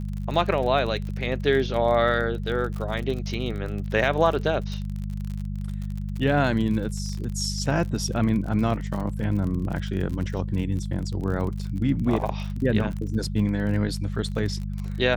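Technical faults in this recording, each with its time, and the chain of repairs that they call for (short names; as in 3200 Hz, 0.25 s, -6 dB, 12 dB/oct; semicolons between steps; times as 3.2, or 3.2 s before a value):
crackle 44/s -31 dBFS
hum 50 Hz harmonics 4 -30 dBFS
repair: de-click; de-hum 50 Hz, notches 4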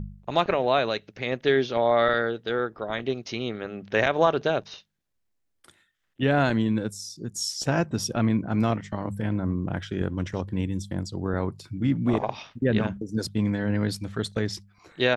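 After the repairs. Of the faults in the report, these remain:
none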